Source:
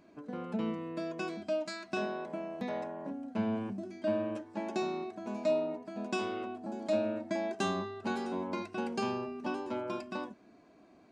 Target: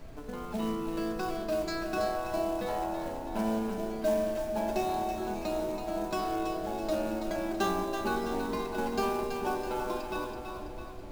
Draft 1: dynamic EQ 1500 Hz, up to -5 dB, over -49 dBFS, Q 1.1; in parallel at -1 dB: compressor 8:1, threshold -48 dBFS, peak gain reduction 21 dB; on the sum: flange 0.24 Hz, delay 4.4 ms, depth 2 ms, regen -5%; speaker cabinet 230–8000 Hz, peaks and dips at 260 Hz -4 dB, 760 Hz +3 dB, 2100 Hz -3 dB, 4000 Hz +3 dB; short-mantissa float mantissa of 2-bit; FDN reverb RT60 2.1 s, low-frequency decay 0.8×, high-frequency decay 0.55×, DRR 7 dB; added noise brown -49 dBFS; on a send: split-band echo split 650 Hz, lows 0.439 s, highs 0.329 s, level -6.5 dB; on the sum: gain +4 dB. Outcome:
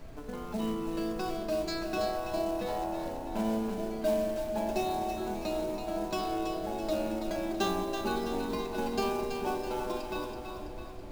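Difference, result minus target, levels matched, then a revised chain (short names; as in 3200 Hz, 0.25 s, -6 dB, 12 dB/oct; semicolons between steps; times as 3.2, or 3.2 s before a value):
4000 Hz band +2.5 dB
dynamic EQ 3400 Hz, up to -5 dB, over -49 dBFS, Q 1.1; in parallel at -1 dB: compressor 8:1, threshold -48 dBFS, peak gain reduction 21.5 dB; on the sum: flange 0.24 Hz, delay 4.4 ms, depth 2 ms, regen -5%; speaker cabinet 230–8000 Hz, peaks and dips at 260 Hz -4 dB, 760 Hz +3 dB, 2100 Hz -3 dB, 4000 Hz +3 dB; short-mantissa float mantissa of 2-bit; FDN reverb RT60 2.1 s, low-frequency decay 0.8×, high-frequency decay 0.55×, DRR 7 dB; added noise brown -49 dBFS; on a send: split-band echo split 650 Hz, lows 0.439 s, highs 0.329 s, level -6.5 dB; on the sum: gain +4 dB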